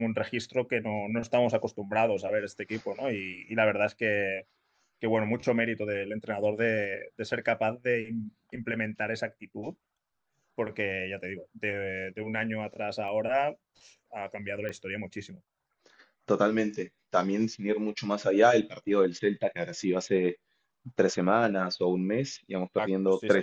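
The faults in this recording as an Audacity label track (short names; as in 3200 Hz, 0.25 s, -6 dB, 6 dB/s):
13.080000	13.080000	gap 3.6 ms
14.690000	14.690000	pop -24 dBFS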